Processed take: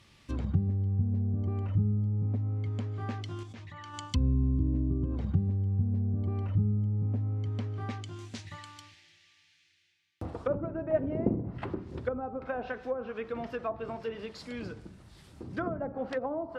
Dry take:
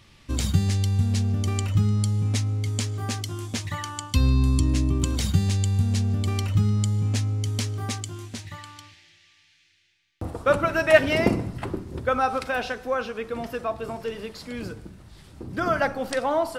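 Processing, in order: HPF 57 Hz 6 dB/oct; treble ducked by the level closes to 460 Hz, closed at -20.5 dBFS; 3.43–3.94 level quantiser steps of 20 dB; gain -5 dB

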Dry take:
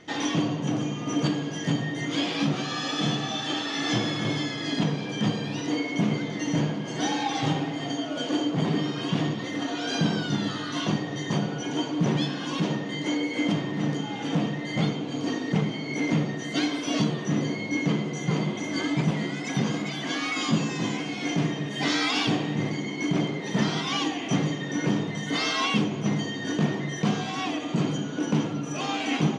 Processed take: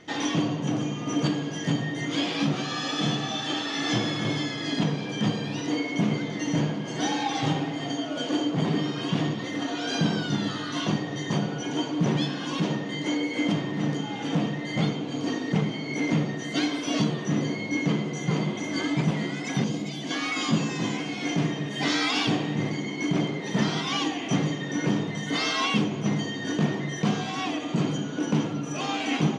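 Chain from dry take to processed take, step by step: 19.64–20.11 bell 1400 Hz -11.5 dB 1.5 oct

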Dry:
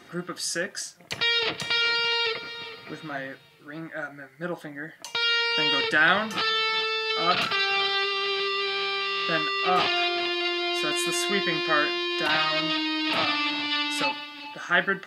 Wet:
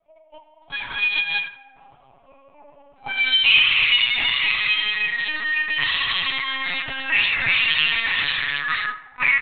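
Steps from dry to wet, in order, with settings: speed glide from 179% -> 141%; in parallel at 0 dB: limiter -18.5 dBFS, peak gain reduction 11.5 dB; on the sum: companded quantiser 8-bit; bell 120 Hz -10.5 dB 2.5 oct; plate-style reverb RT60 3.8 s, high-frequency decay 0.7×, DRR -6.5 dB; gate -16 dBFS, range -20 dB; low shelf 250 Hz -10 dB; auto-wah 630–3100 Hz, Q 3.2, up, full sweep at -10 dBFS; LPC vocoder at 8 kHz pitch kept; comb 7.2 ms, depth 37%; on a send: narrowing echo 84 ms, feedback 56%, band-pass 1500 Hz, level -15.5 dB; on the sum: attack slew limiter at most 470 dB/s; gain +2 dB

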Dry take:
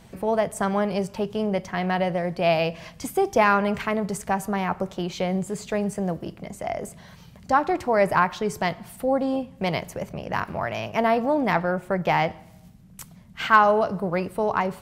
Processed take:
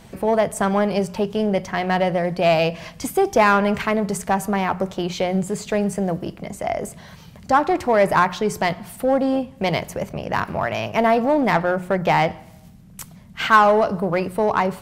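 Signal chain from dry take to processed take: in parallel at -4.5 dB: hard clip -20 dBFS, distortion -9 dB; on the sum: notches 60/120/180 Hz; gain +1 dB

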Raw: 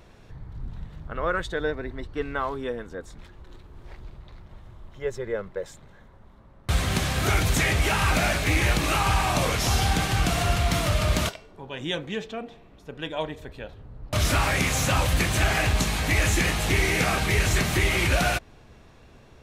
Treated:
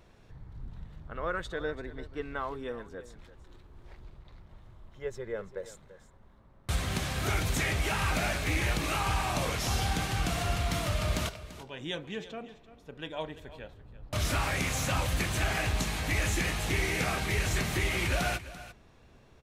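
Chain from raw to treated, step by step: 5.36–6.76 dynamic EQ 9400 Hz, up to +5 dB, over -59 dBFS, Q 0.73; echo 0.339 s -15.5 dB; ending taper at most 340 dB/s; gain -7 dB

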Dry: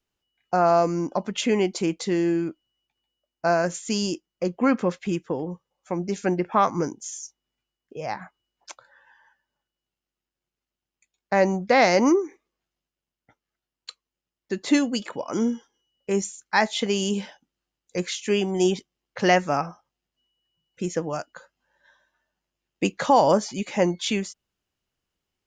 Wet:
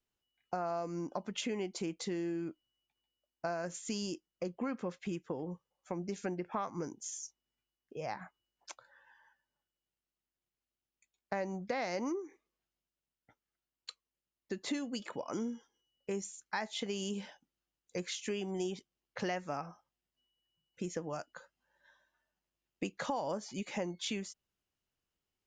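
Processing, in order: compressor 4:1, threshold -28 dBFS, peak gain reduction 13 dB; gain -7 dB

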